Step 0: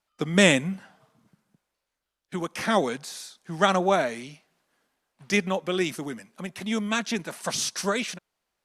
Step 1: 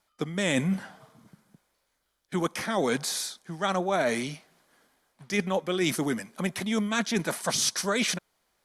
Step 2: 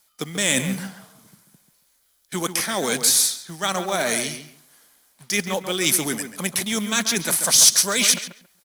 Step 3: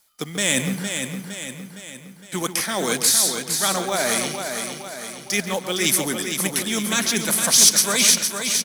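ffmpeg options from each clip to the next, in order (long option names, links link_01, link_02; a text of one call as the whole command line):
ffmpeg -i in.wav -af "equalizer=frequency=11000:width=3.7:gain=4,bandreject=frequency=2700:width=11,areverse,acompressor=threshold=-30dB:ratio=16,areverse,volume=7.5dB" out.wav
ffmpeg -i in.wav -filter_complex "[0:a]crystalizer=i=5:c=0,asplit=2[link_01][link_02];[link_02]adelay=138,lowpass=frequency=2500:poles=1,volume=-8.5dB,asplit=2[link_03][link_04];[link_04]adelay=138,lowpass=frequency=2500:poles=1,volume=0.21,asplit=2[link_05][link_06];[link_06]adelay=138,lowpass=frequency=2500:poles=1,volume=0.21[link_07];[link_01][link_03][link_05][link_07]amix=inputs=4:normalize=0,acrusher=bits=4:mode=log:mix=0:aa=0.000001" out.wav
ffmpeg -i in.wav -af "aecho=1:1:461|922|1383|1844|2305|2766:0.473|0.246|0.128|0.0665|0.0346|0.018" out.wav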